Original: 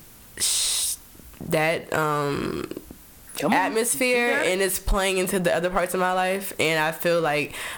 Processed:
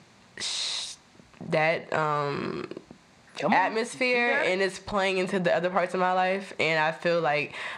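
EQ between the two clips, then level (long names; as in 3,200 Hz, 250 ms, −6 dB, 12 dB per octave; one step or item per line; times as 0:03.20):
loudspeaker in its box 160–5,700 Hz, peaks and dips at 290 Hz −9 dB, 460 Hz −5 dB, 1,400 Hz −5 dB, 3,100 Hz −7 dB, 5,400 Hz −7 dB
0.0 dB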